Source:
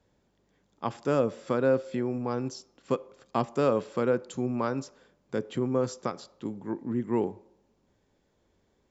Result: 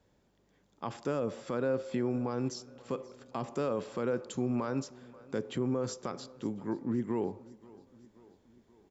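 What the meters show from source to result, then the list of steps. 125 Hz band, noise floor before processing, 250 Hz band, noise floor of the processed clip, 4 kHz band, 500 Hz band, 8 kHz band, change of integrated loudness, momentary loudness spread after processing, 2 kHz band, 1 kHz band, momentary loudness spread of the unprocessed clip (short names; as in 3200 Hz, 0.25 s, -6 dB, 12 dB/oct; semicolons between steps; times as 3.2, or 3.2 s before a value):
-3.5 dB, -71 dBFS, -3.0 dB, -70 dBFS, -2.0 dB, -6.0 dB, n/a, -5.0 dB, 10 LU, -5.5 dB, -6.5 dB, 10 LU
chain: limiter -23 dBFS, peak gain reduction 11 dB; feedback echo 0.529 s, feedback 59%, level -22 dB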